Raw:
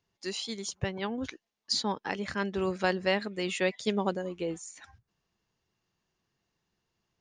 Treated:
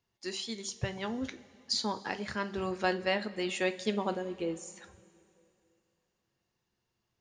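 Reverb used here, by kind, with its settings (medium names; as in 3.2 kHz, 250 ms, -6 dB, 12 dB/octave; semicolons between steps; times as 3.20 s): two-slope reverb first 0.27 s, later 2.8 s, from -18 dB, DRR 8 dB; trim -2.5 dB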